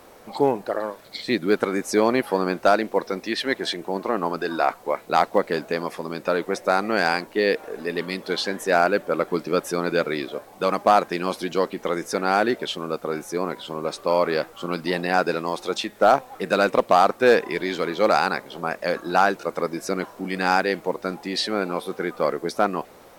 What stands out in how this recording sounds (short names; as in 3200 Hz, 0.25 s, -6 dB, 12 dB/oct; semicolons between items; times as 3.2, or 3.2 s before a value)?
noise floor -48 dBFS; spectral tilt -2.5 dB/oct